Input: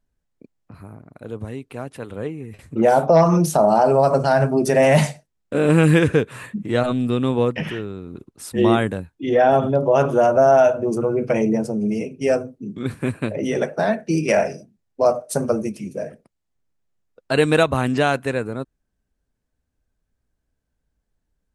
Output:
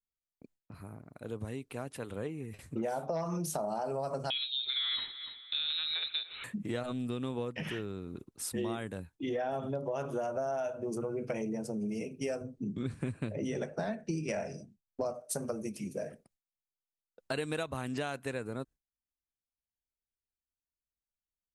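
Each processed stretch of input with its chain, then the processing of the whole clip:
0:04.30–0:06.44: low-shelf EQ 250 Hz −6.5 dB + repeating echo 291 ms, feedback 30%, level −22 dB + voice inversion scrambler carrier 4,000 Hz
0:12.41–0:15.14: low-pass filter 9,100 Hz 24 dB per octave + low-shelf EQ 220 Hz +10 dB
whole clip: noise gate with hold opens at −40 dBFS; high-shelf EQ 3,900 Hz +7 dB; downward compressor 6 to 1, threshold −25 dBFS; level −7.5 dB

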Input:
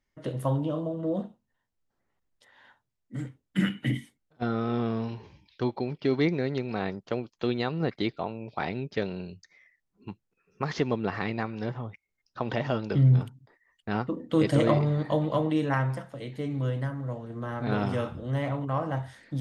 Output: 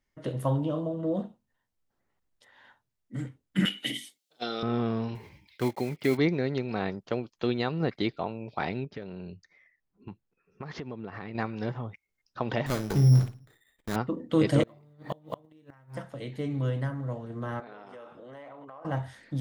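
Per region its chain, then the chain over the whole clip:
0:03.65–0:04.63: high-pass filter 400 Hz + high shelf with overshoot 2,500 Hz +11 dB, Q 1.5 + notch filter 1,000 Hz, Q 9.5
0:05.15–0:06.19: one scale factor per block 5 bits + high-pass filter 41 Hz + parametric band 2,100 Hz +14 dB 0.21 octaves
0:08.84–0:11.35: low-pass filter 2,300 Hz 6 dB per octave + downward compressor 5 to 1, threshold −35 dBFS
0:12.66–0:13.96: lower of the sound and its delayed copy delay 0.53 ms + flutter between parallel walls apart 9.4 metres, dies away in 0.29 s + bad sample-rate conversion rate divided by 8×, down none, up hold
0:14.63–0:15.97: one scale factor per block 7 bits + gate with flip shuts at −18 dBFS, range −32 dB
0:17.60–0:18.85: high-pass filter 470 Hz + high-shelf EQ 2,600 Hz −10.5 dB + downward compressor 10 to 1, threshold −42 dBFS
whole clip: no processing

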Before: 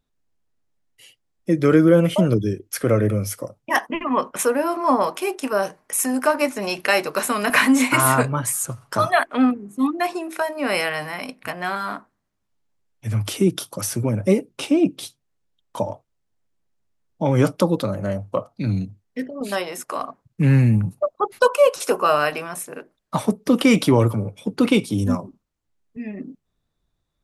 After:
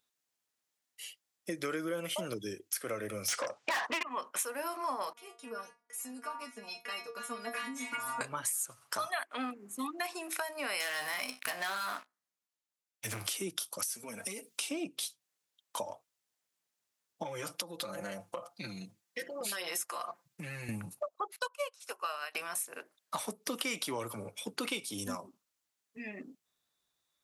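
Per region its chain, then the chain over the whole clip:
0:03.28–0:04.03: low-pass filter 7,800 Hz 24 dB per octave + mid-hump overdrive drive 35 dB, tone 1,800 Hz, clips at −3.5 dBFS
0:05.13–0:08.21: spectral tilt −3.5 dB per octave + stiff-string resonator 230 Hz, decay 0.28 s, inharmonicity 0.002
0:10.80–0:13.27: tuned comb filter 64 Hz, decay 0.25 s + leveller curve on the samples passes 3
0:13.83–0:14.69: high-shelf EQ 2,400 Hz +10 dB + comb filter 4.4 ms, depth 64% + downward compressor, threshold −28 dBFS
0:17.23–0:20.69: comb filter 5.8 ms, depth 94% + downward compressor 10 to 1, threshold −24 dBFS
0:21.36–0:22.35: meter weighting curve A + expander for the loud parts 2.5 to 1, over −27 dBFS
whole clip: high-pass filter 1,300 Hz 6 dB per octave; high-shelf EQ 4,200 Hz +6.5 dB; downward compressor 4 to 1, threshold −35 dBFS

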